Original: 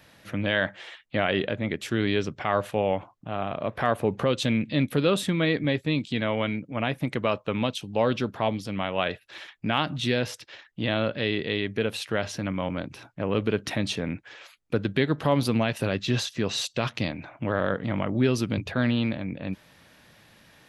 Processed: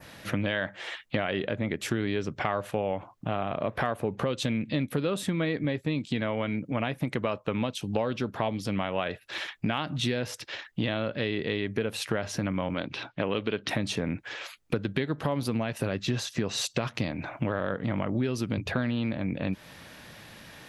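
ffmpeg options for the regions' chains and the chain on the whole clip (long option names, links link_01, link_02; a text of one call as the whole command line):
ffmpeg -i in.wav -filter_complex "[0:a]asettb=1/sr,asplit=3[link_01][link_02][link_03];[link_01]atrim=end=12.744[link_04];[link_02]atrim=start=12.74:end=13.69,asetpts=PTS-STARTPTS,afade=type=in:duration=0.004:curve=qsin,afade=type=out:start_time=0.946:duration=0.004:curve=qsin,lowpass=frequency=3600:width_type=q:width=2.3,lowshelf=frequency=130:gain=-10.5[link_05];[link_03]atrim=start=13.686[link_06];[link_04][link_05]acrossfade=duration=0.004:curve1=hsin:curve2=qsin[link_07];[link_07][link_06]acrossfade=duration=0.004:curve1=qsin:curve2=hsin,adynamicequalizer=threshold=0.00631:dfrequency=3400:dqfactor=1.2:tfrequency=3400:tqfactor=1.2:attack=5:release=100:ratio=0.375:range=2.5:mode=cutabove:tftype=bell,acompressor=threshold=-33dB:ratio=6,volume=7.5dB" out.wav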